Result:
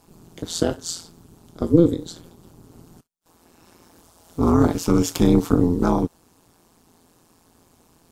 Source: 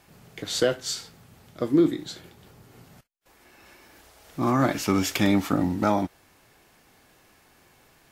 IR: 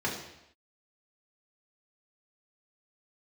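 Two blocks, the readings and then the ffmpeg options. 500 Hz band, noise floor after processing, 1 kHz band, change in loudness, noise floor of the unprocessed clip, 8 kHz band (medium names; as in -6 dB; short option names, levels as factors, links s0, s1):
+4.5 dB, -59 dBFS, 0.0 dB, +4.5 dB, -59 dBFS, +2.5 dB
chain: -af "equalizer=f=125:t=o:w=1:g=3,equalizer=f=250:t=o:w=1:g=10,equalizer=f=500:t=o:w=1:g=-4,equalizer=f=1000:t=o:w=1:g=5,equalizer=f=2000:t=o:w=1:g=-11,equalizer=f=8000:t=o:w=1:g=5,tremolo=f=170:d=0.974,volume=1.41"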